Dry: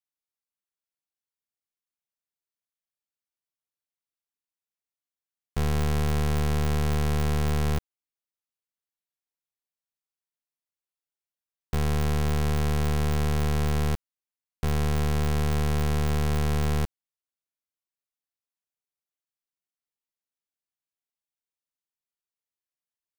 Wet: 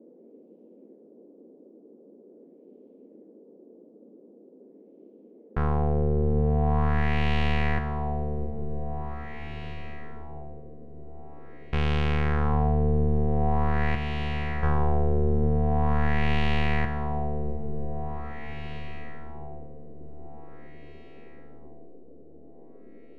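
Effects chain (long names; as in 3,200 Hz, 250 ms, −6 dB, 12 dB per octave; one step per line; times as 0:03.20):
feedback delay with all-pass diffusion 776 ms, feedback 59%, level −5 dB
auto-filter low-pass sine 0.44 Hz 430–2,900 Hz
noise in a band 210–500 Hz −52 dBFS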